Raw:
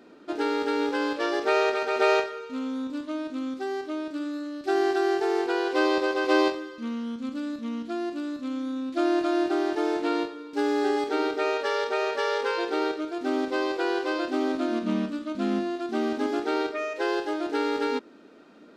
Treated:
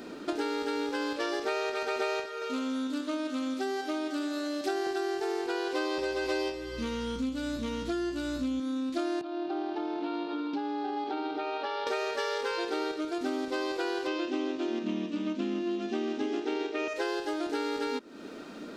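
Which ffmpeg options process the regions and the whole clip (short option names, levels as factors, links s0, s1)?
-filter_complex "[0:a]asettb=1/sr,asplit=3[s0][s1][s2];[s0]atrim=end=2.254[s3];[s1]atrim=start=2.25:end=4.87,asetpts=PTS-STARTPTS,afade=t=in:d=0.004:c=qsin,afade=t=out:st=2.616:d=0.004:c=qsin,highpass=290,aecho=1:1:165|330|495|660|825|990:0.299|0.167|0.0936|0.0524|0.0294|0.0164,atrim=end_sample=115542[s4];[s2]atrim=start=4.866[s5];[s3][s4]acrossfade=d=0.004:c1=hsin:c2=qsin[s6];[s6][s5]acrossfade=d=0.004:c1=qsin:c2=hsin,asettb=1/sr,asplit=3[s7][s8][s9];[s7]atrim=end=5.974[s10];[s8]atrim=start=5.97:end=8.6,asetpts=PTS-STARTPTS,afade=t=in:d=0.004:c=qsin,afade=t=out:st=2.626:d=0.004:c=qsin,aeval=exprs='val(0)+0.002*(sin(2*PI*60*n/s)+sin(2*PI*2*60*n/s)/2+sin(2*PI*3*60*n/s)/3+sin(2*PI*4*60*n/s)/4+sin(2*PI*5*60*n/s)/5)':c=same,asplit=2[s11][s12];[s12]adelay=15,volume=0.668[s13];[s11][s13]amix=inputs=2:normalize=0,atrim=end_sample=115983[s14];[s9]atrim=start=8.596[s15];[s10][s14]acrossfade=d=0.004:c1=hsin:c2=qsin[s16];[s16][s15]acrossfade=d=0.004:c1=qsin:c2=hsin,asettb=1/sr,asplit=3[s17][s18][s19];[s17]atrim=end=9.214[s20];[s18]atrim=start=9.21:end=11.87,asetpts=PTS-STARTPTS,afade=t=in:d=0.004:c=qsin,afade=t=out:st=2.656:d=0.004:c=qsin,acompressor=threshold=0.0178:ratio=5:attack=3.2:release=140:knee=1:detection=peak,highpass=f=160:w=0.5412,highpass=f=160:w=1.3066,equalizer=f=320:t=q:w=4:g=5,equalizer=f=470:t=q:w=4:g=-9,equalizer=f=790:t=q:w=4:g=9,equalizer=f=1900:t=q:w=4:g=-8,lowpass=f=4000:w=0.5412,lowpass=f=4000:w=1.3066[s21];[s19]atrim=start=11.866[s22];[s20][s21]acrossfade=d=0.004:c1=hsin:c2=qsin[s23];[s23][s22]acrossfade=d=0.004:c1=qsin:c2=hsin,asettb=1/sr,asplit=3[s24][s25][s26];[s24]atrim=end=14.074[s27];[s25]atrim=start=14.07:end=16.88,asetpts=PTS-STARTPTS,afade=t=in:d=0.004:c=qsin,afade=t=out:st=2.806:d=0.004:c=qsin,highpass=170,equalizer=f=360:t=q:w=4:g=4,equalizer=f=680:t=q:w=4:g=-5,equalizer=f=1400:t=q:w=4:g=-6,equalizer=f=2800:t=q:w=4:g=5,equalizer=f=4500:t=q:w=4:g=-6,lowpass=f=6400:w=0.5412,lowpass=f=6400:w=1.3066,aecho=1:1:273:0.473,atrim=end_sample=123921[s28];[s26]atrim=start=16.876[s29];[s27][s28]acrossfade=d=0.004:c1=hsin:c2=qsin[s30];[s30][s29]acrossfade=d=0.004:c1=qsin:c2=hsin,lowshelf=f=140:g=7.5,acompressor=threshold=0.0126:ratio=6,highshelf=f=4000:g=9,volume=2.37"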